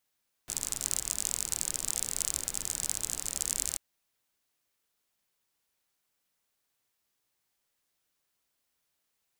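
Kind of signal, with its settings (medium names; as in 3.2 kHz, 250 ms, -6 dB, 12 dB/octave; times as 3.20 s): rain from filtered ticks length 3.29 s, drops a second 45, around 7.6 kHz, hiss -12 dB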